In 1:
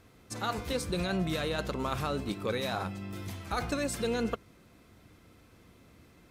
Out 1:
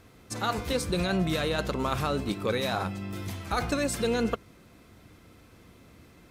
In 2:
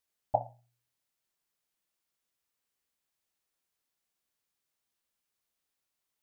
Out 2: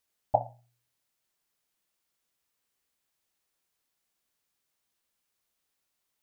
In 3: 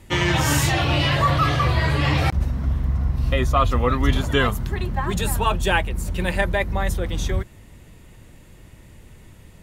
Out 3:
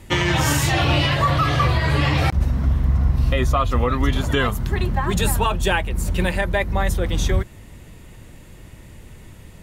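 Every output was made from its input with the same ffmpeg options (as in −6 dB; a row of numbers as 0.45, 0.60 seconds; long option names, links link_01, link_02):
-af "alimiter=limit=-12.5dB:level=0:latency=1:release=279,volume=4dB"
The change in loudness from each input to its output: +4.0, +3.5, +1.0 LU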